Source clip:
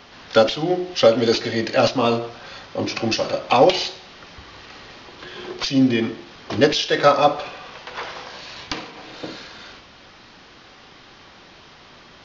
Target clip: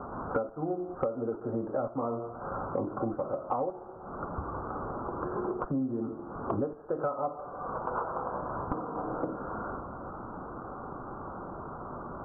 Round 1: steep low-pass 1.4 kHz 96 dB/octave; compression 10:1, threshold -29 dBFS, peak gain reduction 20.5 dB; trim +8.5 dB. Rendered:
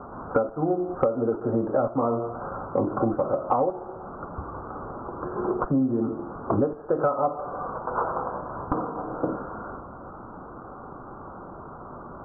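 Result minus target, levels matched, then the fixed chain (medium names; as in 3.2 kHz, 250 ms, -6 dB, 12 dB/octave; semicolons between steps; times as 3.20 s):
compression: peak gain reduction -8 dB
steep low-pass 1.4 kHz 96 dB/octave; compression 10:1, threshold -38 dBFS, peak gain reduction 28.5 dB; trim +8.5 dB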